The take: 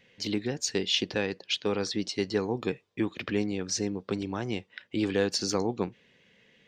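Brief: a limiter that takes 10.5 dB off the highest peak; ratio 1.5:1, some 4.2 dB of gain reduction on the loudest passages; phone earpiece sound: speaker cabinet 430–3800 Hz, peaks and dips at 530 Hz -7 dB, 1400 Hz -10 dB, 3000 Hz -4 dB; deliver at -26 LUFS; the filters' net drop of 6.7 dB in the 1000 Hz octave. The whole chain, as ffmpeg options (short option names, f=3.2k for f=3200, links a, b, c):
-af "equalizer=f=1k:t=o:g=-6,acompressor=threshold=-35dB:ratio=1.5,alimiter=level_in=4.5dB:limit=-24dB:level=0:latency=1,volume=-4.5dB,highpass=430,equalizer=f=530:t=q:w=4:g=-7,equalizer=f=1.4k:t=q:w=4:g=-10,equalizer=f=3k:t=q:w=4:g=-4,lowpass=f=3.8k:w=0.5412,lowpass=f=3.8k:w=1.3066,volume=20dB"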